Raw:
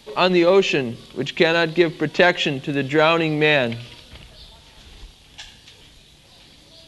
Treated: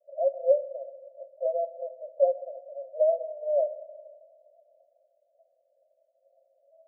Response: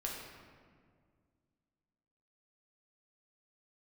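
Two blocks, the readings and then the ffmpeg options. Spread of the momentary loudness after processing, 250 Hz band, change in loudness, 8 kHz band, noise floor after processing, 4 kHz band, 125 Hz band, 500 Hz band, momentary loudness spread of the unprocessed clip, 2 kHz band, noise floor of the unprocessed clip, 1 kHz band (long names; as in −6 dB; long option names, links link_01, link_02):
17 LU, below −40 dB, −10.5 dB, can't be measured, −71 dBFS, below −40 dB, below −40 dB, −6.5 dB, 11 LU, below −40 dB, −50 dBFS, −14.5 dB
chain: -filter_complex "[0:a]asuperpass=centerf=600:order=12:qfactor=3.6,asplit=2[link_01][link_02];[1:a]atrim=start_sample=2205[link_03];[link_02][link_03]afir=irnorm=-1:irlink=0,volume=-11.5dB[link_04];[link_01][link_04]amix=inputs=2:normalize=0,volume=-3.5dB"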